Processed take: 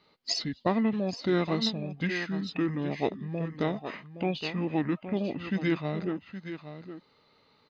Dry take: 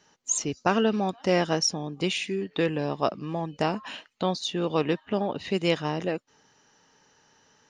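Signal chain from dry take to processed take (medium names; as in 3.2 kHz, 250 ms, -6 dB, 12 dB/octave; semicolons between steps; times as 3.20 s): delay 818 ms -11 dB; formant shift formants -6 st; trim -3 dB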